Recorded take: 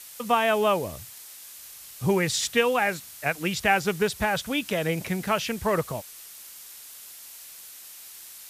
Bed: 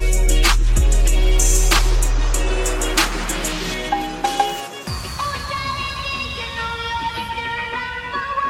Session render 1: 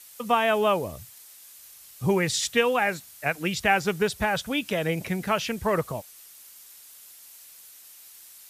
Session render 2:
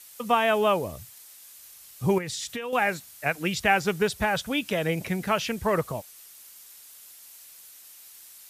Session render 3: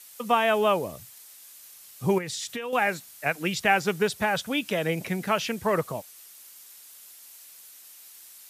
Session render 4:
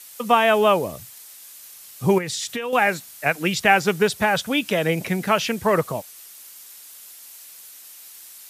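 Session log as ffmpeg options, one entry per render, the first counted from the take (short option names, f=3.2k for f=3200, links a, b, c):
-af "afftdn=nr=6:nf=-45"
-filter_complex "[0:a]asettb=1/sr,asplit=3[a][b][c];[a]atrim=end=2.184[d];[b]atrim=start=2.18:end=2.73,asetpts=PTS-STARTPTS,afade=t=in:d=0.004:c=qsin,afade=t=out:st=0.546:d=0.004:c=qsin,acompressor=threshold=-29dB:ratio=16:attack=3.2:release=140:knee=1:detection=peak[e];[c]atrim=start=2.726[f];[d][e]acrossfade=d=0.004:c1=hsin:c2=qsin[g];[g][f]acrossfade=d=0.004:c1=qsin:c2=hsin"
-af "highpass=130"
-af "volume=5.5dB"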